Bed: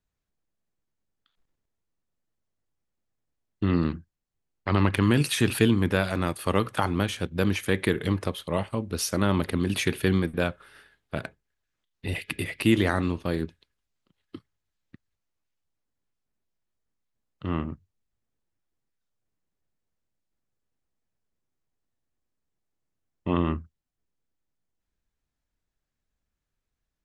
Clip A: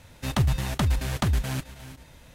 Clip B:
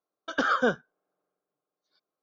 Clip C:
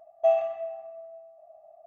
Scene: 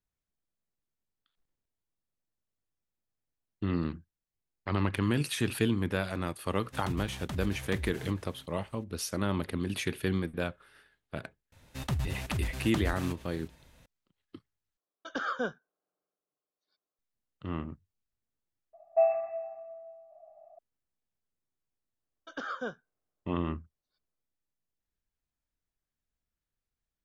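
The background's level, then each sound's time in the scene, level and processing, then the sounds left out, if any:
bed −7 dB
0:06.50: mix in A −14 dB
0:11.52: mix in A −9 dB
0:14.77: overwrite with B −8.5 dB
0:18.73: mix in C −2.5 dB + linear-phase brick-wall low-pass 2,700 Hz
0:21.99: mix in B −12.5 dB

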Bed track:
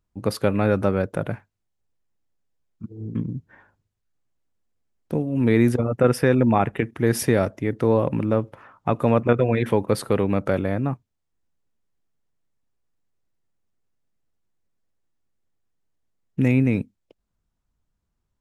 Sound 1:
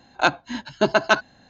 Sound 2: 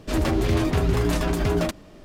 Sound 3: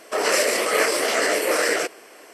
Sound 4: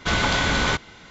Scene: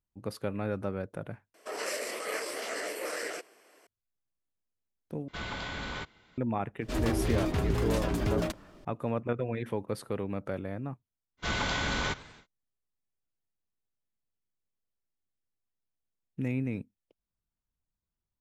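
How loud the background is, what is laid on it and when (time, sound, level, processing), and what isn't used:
bed track −13 dB
0:01.54: overwrite with 3 −15 dB
0:05.28: overwrite with 4 −16 dB + parametric band 6,200 Hz −7 dB 0.5 octaves
0:06.81: mix in 2 −7.5 dB
0:11.37: mix in 4 −9.5 dB, fades 0.10 s + feedback echo with a swinging delay time 97 ms, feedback 56%, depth 203 cents, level −20.5 dB
not used: 1

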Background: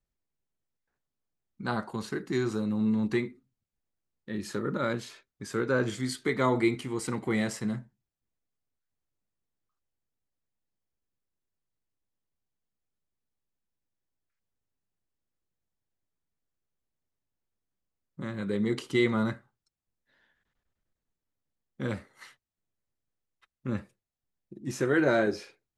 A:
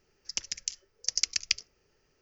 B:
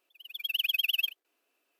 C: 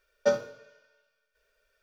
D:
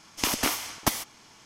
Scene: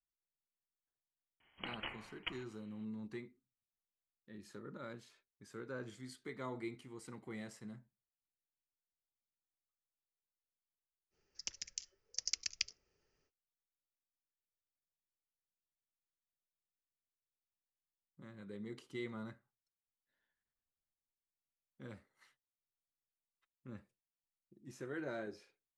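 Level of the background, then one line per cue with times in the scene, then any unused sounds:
background −18.5 dB
0:01.40: mix in D −16.5 dB + voice inversion scrambler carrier 3,200 Hz
0:11.10: mix in A −10.5 dB, fades 0.05 s
not used: B, C

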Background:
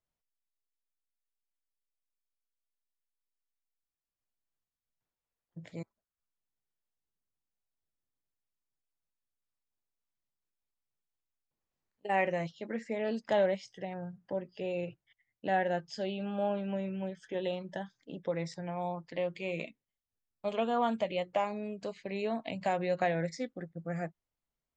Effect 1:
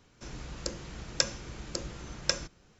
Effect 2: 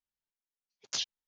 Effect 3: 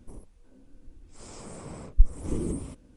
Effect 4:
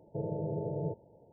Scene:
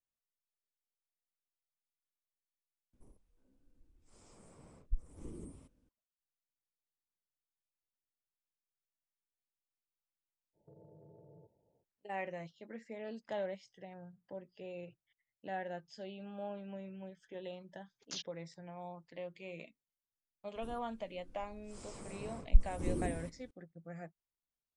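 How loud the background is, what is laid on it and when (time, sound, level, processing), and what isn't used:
background −11 dB
0:02.93: overwrite with 3 −17.5 dB
0:10.53: mix in 4 −16.5 dB, fades 0.05 s + downward compressor, threshold −39 dBFS
0:17.18: mix in 2 −10 dB
0:20.55: mix in 3 −6 dB
not used: 1

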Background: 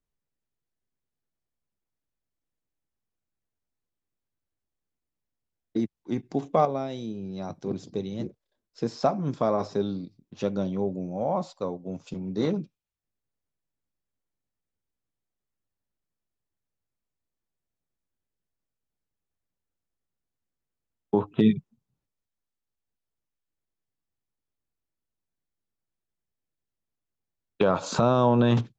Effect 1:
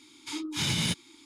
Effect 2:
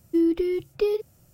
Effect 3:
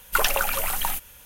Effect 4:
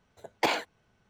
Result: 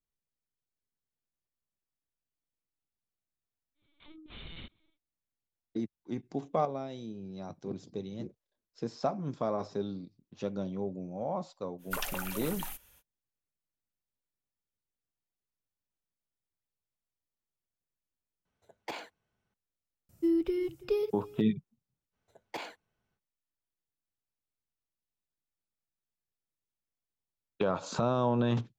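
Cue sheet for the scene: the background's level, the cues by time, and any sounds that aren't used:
background −7.5 dB
0:03.74: mix in 1 −16.5 dB, fades 0.10 s + linear-prediction vocoder at 8 kHz pitch kept
0:11.78: mix in 3 −14 dB, fades 0.05 s
0:18.45: overwrite with 4 −14 dB
0:20.09: mix in 2 −6.5 dB + single-tap delay 331 ms −20.5 dB
0:22.11: mix in 4 −14 dB, fades 0.05 s

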